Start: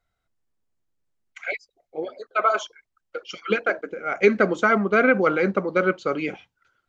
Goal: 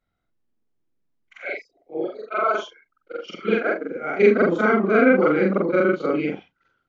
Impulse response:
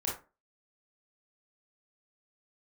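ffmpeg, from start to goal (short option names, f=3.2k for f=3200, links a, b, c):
-filter_complex "[0:a]afftfilt=real='re':imag='-im':win_size=4096:overlap=0.75,equalizer=f=260:t=o:w=1.5:g=9.5,acrossover=split=310|3000[a][b][c];[a]acompressor=threshold=-26dB:ratio=6[d];[d][b][c]amix=inputs=3:normalize=0,lowpass=4.5k,volume=3dB"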